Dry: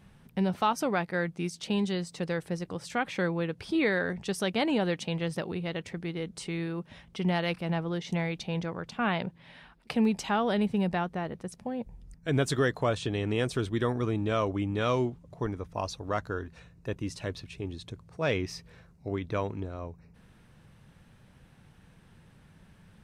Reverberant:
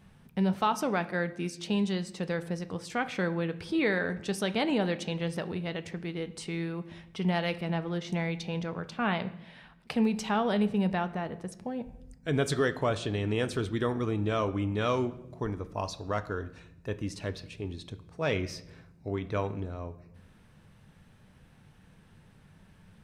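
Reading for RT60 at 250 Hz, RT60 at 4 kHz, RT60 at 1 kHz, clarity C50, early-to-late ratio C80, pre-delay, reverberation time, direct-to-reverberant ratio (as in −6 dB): 1.3 s, 0.65 s, 0.75 s, 15.5 dB, 18.0 dB, 5 ms, 0.80 s, 10.5 dB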